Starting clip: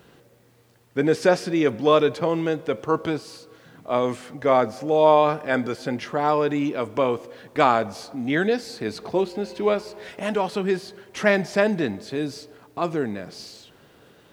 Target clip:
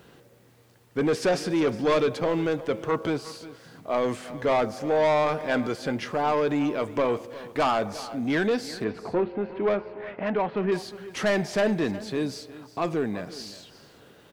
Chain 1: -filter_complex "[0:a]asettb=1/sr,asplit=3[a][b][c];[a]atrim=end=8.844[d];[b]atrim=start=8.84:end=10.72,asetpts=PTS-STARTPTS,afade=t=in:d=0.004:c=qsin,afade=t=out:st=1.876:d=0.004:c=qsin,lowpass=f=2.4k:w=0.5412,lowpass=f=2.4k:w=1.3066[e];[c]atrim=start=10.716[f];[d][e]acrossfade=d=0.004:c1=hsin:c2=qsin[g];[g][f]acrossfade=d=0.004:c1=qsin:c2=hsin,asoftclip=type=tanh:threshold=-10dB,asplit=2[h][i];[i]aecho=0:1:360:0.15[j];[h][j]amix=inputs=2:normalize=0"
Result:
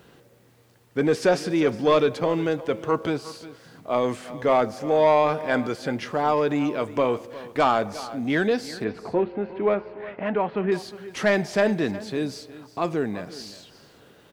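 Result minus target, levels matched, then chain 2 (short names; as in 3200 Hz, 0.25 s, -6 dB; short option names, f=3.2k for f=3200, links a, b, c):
soft clip: distortion -8 dB
-filter_complex "[0:a]asettb=1/sr,asplit=3[a][b][c];[a]atrim=end=8.844[d];[b]atrim=start=8.84:end=10.72,asetpts=PTS-STARTPTS,afade=t=in:d=0.004:c=qsin,afade=t=out:st=1.876:d=0.004:c=qsin,lowpass=f=2.4k:w=0.5412,lowpass=f=2.4k:w=1.3066[e];[c]atrim=start=10.716[f];[d][e]acrossfade=d=0.004:c1=hsin:c2=qsin[g];[g][f]acrossfade=d=0.004:c1=qsin:c2=hsin,asoftclip=type=tanh:threshold=-17.5dB,asplit=2[h][i];[i]aecho=0:1:360:0.15[j];[h][j]amix=inputs=2:normalize=0"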